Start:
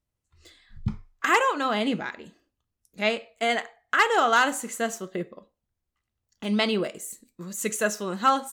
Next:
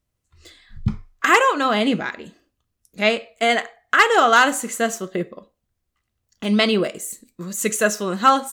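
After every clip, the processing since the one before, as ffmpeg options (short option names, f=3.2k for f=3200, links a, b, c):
-af "bandreject=f=880:w=12,volume=6.5dB"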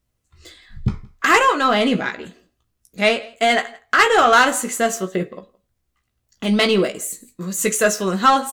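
-filter_complex "[0:a]asoftclip=type=tanh:threshold=-9.5dB,asplit=2[a][b];[b]adelay=16,volume=-7dB[c];[a][c]amix=inputs=2:normalize=0,aecho=1:1:168:0.0631,volume=2.5dB"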